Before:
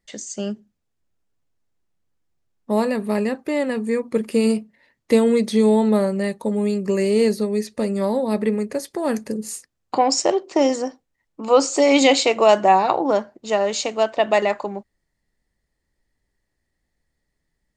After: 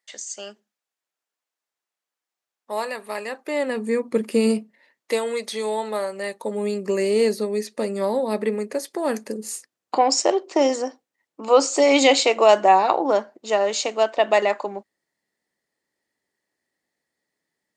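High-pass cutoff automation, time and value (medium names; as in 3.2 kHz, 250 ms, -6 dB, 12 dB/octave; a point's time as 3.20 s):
3.23 s 760 Hz
3.98 s 180 Hz
4.57 s 180 Hz
5.21 s 680 Hz
6.08 s 680 Hz
6.68 s 290 Hz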